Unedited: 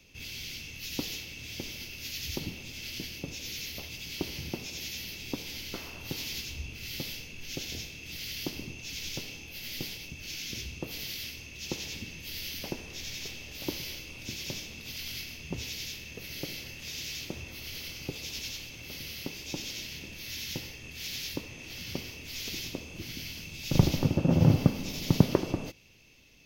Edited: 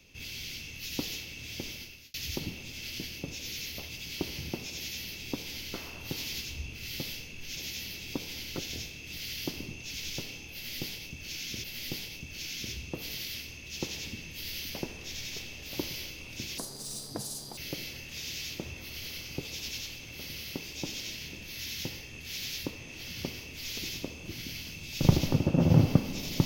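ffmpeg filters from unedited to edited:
-filter_complex "[0:a]asplit=7[a][b][c][d][e][f][g];[a]atrim=end=2.14,asetpts=PTS-STARTPTS,afade=t=out:st=1.71:d=0.43[h];[b]atrim=start=2.14:end=7.572,asetpts=PTS-STARTPTS,afade=t=in:d=0.004:c=hsin[i];[c]atrim=start=4.748:end=5.762[j];[d]atrim=start=7.568:end=10.632[k];[e]atrim=start=9.528:end=14.474[l];[f]atrim=start=14.47:end=16.28,asetpts=PTS-STARTPTS,asetrate=80262,aresample=44100[m];[g]atrim=start=16.276[n];[h][i]concat=n=2:v=0:a=1[o];[o][j]acrossfade=d=0.004:c1=hsin:c2=hsin[p];[p][k]acrossfade=d=0.004:c1=hsin:c2=hsin[q];[q][l]acrossfade=d=0.004:c1=hsin:c2=hsin[r];[r][m]acrossfade=d=0.004:c1=hsin:c2=hsin[s];[s][n]acrossfade=d=0.004:c1=hsin:c2=hsin"

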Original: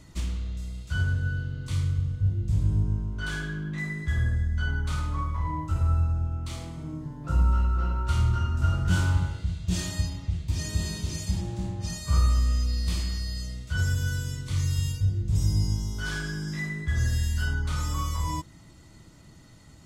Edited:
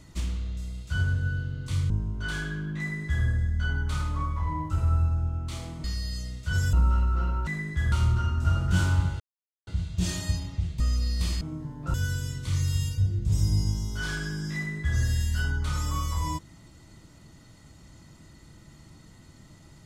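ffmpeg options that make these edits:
-filter_complex "[0:a]asplit=10[a][b][c][d][e][f][g][h][i][j];[a]atrim=end=1.902[k];[b]atrim=start=2.878:end=6.822[l];[c]atrim=start=13.078:end=13.972[m];[d]atrim=start=7.348:end=8.092[n];[e]atrim=start=3.778:end=4.232[o];[f]atrim=start=8.088:end=9.37,asetpts=PTS-STARTPTS,afade=t=out:st=1.278:d=0.004:c=hsin,apad=pad_dur=0.47[p];[g]atrim=start=9.37:end=10.502,asetpts=PTS-STARTPTS,afade=t=in:d=0.004:c=hsin[q];[h]atrim=start=12.468:end=13.082[r];[i]atrim=start=6.818:end=7.352[s];[j]atrim=start=13.968[t];[k][l]acrossfade=d=0.004:c1=hsin:c2=hsin[u];[u][m]acrossfade=d=0.004:c1=hsin:c2=hsin[v];[v][n]acrossfade=d=0.004:c1=hsin:c2=hsin[w];[w][o]acrossfade=d=0.004:c1=hsin:c2=hsin[x];[p][q]concat=n=2:v=0:a=1[y];[x][y]acrossfade=d=0.004:c1=hsin:c2=hsin[z];[z][r]acrossfade=d=0.004:c1=hsin:c2=hsin[aa];[aa][s]acrossfade=d=0.004:c1=hsin:c2=hsin[ab];[ab][t]acrossfade=d=0.004:c1=hsin:c2=hsin"

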